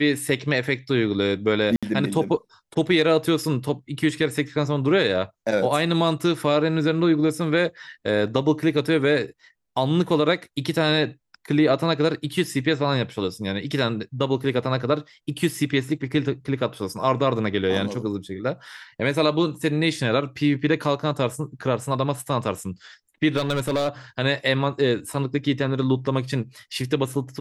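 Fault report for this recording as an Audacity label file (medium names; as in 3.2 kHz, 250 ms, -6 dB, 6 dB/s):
1.760000	1.830000	dropout 66 ms
23.360000	23.880000	clipped -18 dBFS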